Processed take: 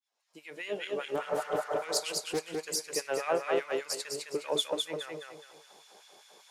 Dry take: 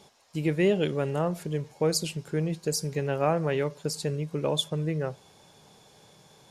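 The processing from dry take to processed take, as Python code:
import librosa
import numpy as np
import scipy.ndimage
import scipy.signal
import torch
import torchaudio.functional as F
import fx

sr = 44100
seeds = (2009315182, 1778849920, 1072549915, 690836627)

p1 = fx.fade_in_head(x, sr, length_s=1.29)
p2 = 10.0 ** (-23.5 / 20.0) * np.tanh(p1 / 10.0 ** (-23.5 / 20.0))
p3 = p1 + (p2 * librosa.db_to_amplitude(-8.0))
p4 = fx.spec_repair(p3, sr, seeds[0], start_s=1.21, length_s=0.55, low_hz=310.0, high_hz=2300.0, source='before')
p5 = fx.filter_lfo_highpass(p4, sr, shape='sine', hz=5.0, low_hz=350.0, high_hz=2100.0, q=1.2)
p6 = p5 + fx.echo_feedback(p5, sr, ms=208, feedback_pct=33, wet_db=-3.0, dry=0)
p7 = fx.transient(p6, sr, attack_db=4, sustain_db=-3, at=(3.57, 4.05))
p8 = scipy.signal.sosfilt(scipy.signal.butter(2, 160.0, 'highpass', fs=sr, output='sos'), p7)
p9 = fx.doppler_dist(p8, sr, depth_ms=0.24, at=(1.15, 2.66))
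y = p9 * librosa.db_to_amplitude(-4.5)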